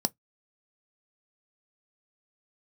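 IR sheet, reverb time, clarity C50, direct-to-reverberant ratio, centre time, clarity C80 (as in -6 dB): no single decay rate, 35.5 dB, 12.5 dB, 2 ms, 51.0 dB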